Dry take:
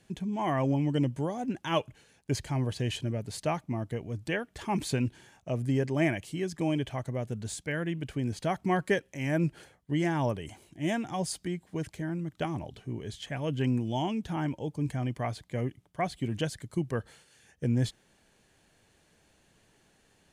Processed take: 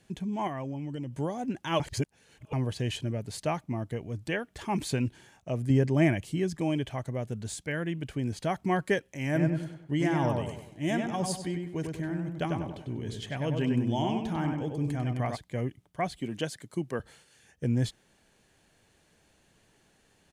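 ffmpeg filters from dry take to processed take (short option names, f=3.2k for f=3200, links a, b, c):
-filter_complex "[0:a]asettb=1/sr,asplit=3[a][b][c];[a]atrim=end=0.474[d];[b]atrim=start=0.47:end=1.17,asetpts=PTS-STARTPTS,afade=t=in:d=0.004:c=qsin,afade=t=out:st=0.696:d=0.004:c=qsin,acompressor=threshold=-33dB:ratio=5:attack=3.2:release=140:knee=1:detection=peak[e];[c]atrim=start=1.166[f];[d][e]acrossfade=d=0.004:c1=hsin:c2=qsin[g];[g][f]acrossfade=d=0.004:c1=qsin:c2=hsin,asettb=1/sr,asplit=3[h][i][j];[h]atrim=end=5.704[k];[i]atrim=start=5.7:end=6.58,asetpts=PTS-STARTPTS,afade=t=in:d=0.004:c=qsin,afade=t=out:st=0.876:d=0.004:c=qsin,lowshelf=f=300:g=7[l];[j]atrim=start=6.576[m];[k][l]acrossfade=d=0.004:c1=hsin:c2=qsin[n];[n][m]acrossfade=d=0.004:c1=qsin:c2=hsin,asplit=3[o][p][q];[o]afade=t=out:st=9.34:d=0.02[r];[p]asplit=2[s][t];[t]adelay=97,lowpass=f=2.6k:p=1,volume=-3.5dB,asplit=2[u][v];[v]adelay=97,lowpass=f=2.6k:p=1,volume=0.42,asplit=2[w][x];[x]adelay=97,lowpass=f=2.6k:p=1,volume=0.42,asplit=2[y][z];[z]adelay=97,lowpass=f=2.6k:p=1,volume=0.42,asplit=2[aa][ab];[ab]adelay=97,lowpass=f=2.6k:p=1,volume=0.42[ac];[s][u][w][y][aa][ac]amix=inputs=6:normalize=0,afade=t=in:st=9.34:d=0.02,afade=t=out:st=15.35:d=0.02[ad];[q]afade=t=in:st=15.35:d=0.02[ae];[r][ad][ae]amix=inputs=3:normalize=0,asettb=1/sr,asplit=3[af][ag][ah];[af]atrim=end=16.214[ai];[ag]atrim=start=16.21:end=17,asetpts=PTS-STARTPTS,afade=t=in:d=0.004:c=qsin,afade=t=out:st=0.786:d=0.004:c=qsin,highpass=180[aj];[ah]atrim=start=16.996[ak];[ai][aj]acrossfade=d=0.004:c1=hsin:c2=qsin[al];[al][ak]acrossfade=d=0.004:c1=qsin:c2=hsin,asplit=3[am][an][ao];[am]atrim=end=1.802[ap];[an]atrim=start=1.798:end=2.532,asetpts=PTS-STARTPTS,areverse[aq];[ao]atrim=start=2.528[ar];[ap][aq]acrossfade=d=0.004:c1=hsin:c2=hsin[as];[as][ar]acrossfade=d=0.004:c1=hsin:c2=hsin"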